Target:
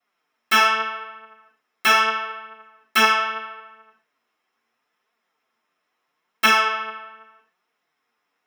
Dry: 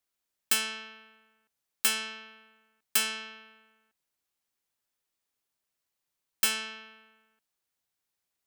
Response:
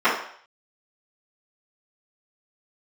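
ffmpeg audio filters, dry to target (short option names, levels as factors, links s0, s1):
-filter_complex "[1:a]atrim=start_sample=2205,atrim=end_sample=6615[s0];[0:a][s0]afir=irnorm=-1:irlink=0,flanger=delay=4.1:depth=6.7:regen=32:speed=0.78:shape=triangular"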